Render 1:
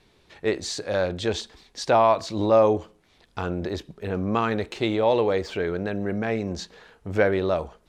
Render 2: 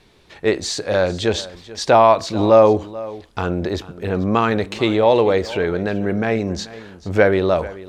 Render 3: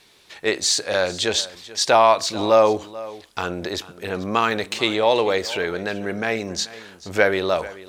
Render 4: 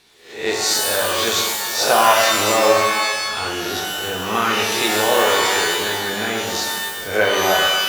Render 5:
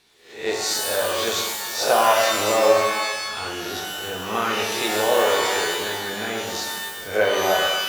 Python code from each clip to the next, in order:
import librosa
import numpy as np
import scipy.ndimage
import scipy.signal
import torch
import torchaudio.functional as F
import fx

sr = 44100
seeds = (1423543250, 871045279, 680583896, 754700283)

y1 = x + 10.0 ** (-18.0 / 20.0) * np.pad(x, (int(437 * sr / 1000.0), 0))[:len(x)]
y1 = y1 * 10.0 ** (6.5 / 20.0)
y2 = fx.tilt_eq(y1, sr, slope=3.0)
y2 = y2 * 10.0 ** (-1.5 / 20.0)
y3 = fx.spec_swells(y2, sr, rise_s=0.49)
y3 = fx.rev_shimmer(y3, sr, seeds[0], rt60_s=1.2, semitones=12, shimmer_db=-2, drr_db=-0.5)
y3 = y3 * 10.0 ** (-4.0 / 20.0)
y4 = fx.dynamic_eq(y3, sr, hz=550.0, q=1.5, threshold_db=-27.0, ratio=4.0, max_db=5)
y4 = y4 * 10.0 ** (-5.5 / 20.0)